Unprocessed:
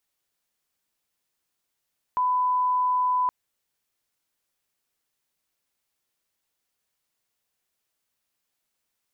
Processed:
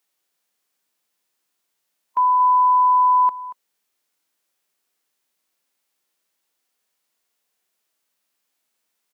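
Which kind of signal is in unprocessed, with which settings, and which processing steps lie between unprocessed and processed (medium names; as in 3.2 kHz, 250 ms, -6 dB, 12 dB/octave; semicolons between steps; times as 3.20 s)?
line-up tone -20 dBFS 1.12 s
high-pass 210 Hz 12 dB/octave; harmonic-percussive split harmonic +7 dB; delay 233 ms -16 dB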